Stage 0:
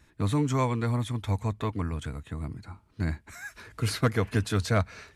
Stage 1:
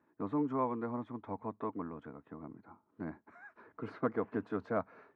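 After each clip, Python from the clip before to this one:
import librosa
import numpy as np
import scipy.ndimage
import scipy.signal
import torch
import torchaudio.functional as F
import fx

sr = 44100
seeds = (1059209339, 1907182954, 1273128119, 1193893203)

y = scipy.signal.sosfilt(scipy.signal.cheby1(2, 1.0, [260.0, 1100.0], 'bandpass', fs=sr, output='sos'), x)
y = y * 10.0 ** (-4.5 / 20.0)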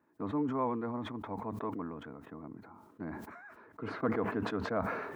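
y = fx.sustainer(x, sr, db_per_s=41.0)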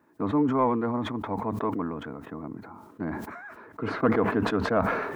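y = fx.tracing_dist(x, sr, depth_ms=0.023)
y = y * 10.0 ** (9.0 / 20.0)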